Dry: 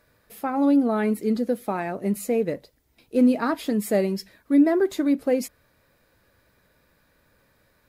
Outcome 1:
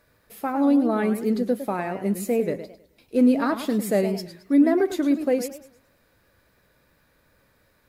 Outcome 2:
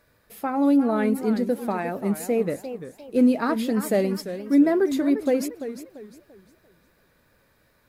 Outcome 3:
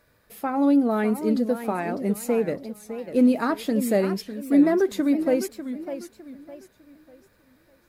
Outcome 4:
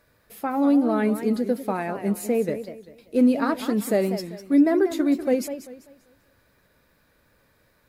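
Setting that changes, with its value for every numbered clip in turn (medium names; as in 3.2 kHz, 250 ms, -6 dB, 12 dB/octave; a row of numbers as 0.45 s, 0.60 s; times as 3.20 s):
modulated delay, time: 106 ms, 347 ms, 602 ms, 195 ms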